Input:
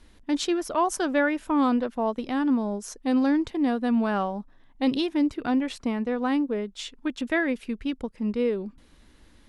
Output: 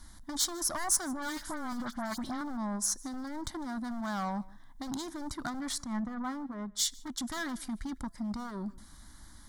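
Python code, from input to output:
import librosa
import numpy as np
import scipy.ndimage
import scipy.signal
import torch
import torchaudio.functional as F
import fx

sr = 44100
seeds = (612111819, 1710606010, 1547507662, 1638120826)

y = np.minimum(x, 2.0 * 10.0 ** (-23.5 / 20.0) - x)
y = fx.dispersion(y, sr, late='highs', ms=75.0, hz=2200.0, at=(1.13, 2.41))
y = fx.over_compress(y, sr, threshold_db=-29.0, ratio=-1.0)
y = 10.0 ** (-26.5 / 20.0) * np.tanh(y / 10.0 ** (-26.5 / 20.0))
y = fx.high_shelf(y, sr, hz=2800.0, db=9.5)
y = fx.fixed_phaser(y, sr, hz=1100.0, stages=4)
y = fx.comb_fb(y, sr, f0_hz=340.0, decay_s=0.64, harmonics='all', damping=0.0, mix_pct=30)
y = y + 10.0 ** (-23.0 / 20.0) * np.pad(y, (int(153 * sr / 1000.0), 0))[:len(y)]
y = fx.band_widen(y, sr, depth_pct=70, at=(5.84, 7.2))
y = F.gain(torch.from_numpy(y), 3.0).numpy()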